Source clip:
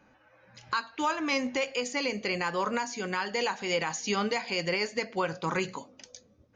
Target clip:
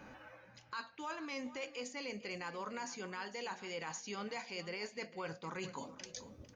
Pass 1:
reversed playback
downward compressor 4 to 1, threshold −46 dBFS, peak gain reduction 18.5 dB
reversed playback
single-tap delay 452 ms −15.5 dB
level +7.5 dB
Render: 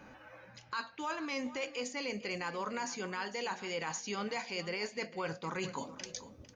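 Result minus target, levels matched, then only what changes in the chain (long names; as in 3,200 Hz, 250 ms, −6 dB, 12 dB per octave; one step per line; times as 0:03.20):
downward compressor: peak gain reduction −5.5 dB
change: downward compressor 4 to 1, threshold −53 dBFS, peak gain reduction 23.5 dB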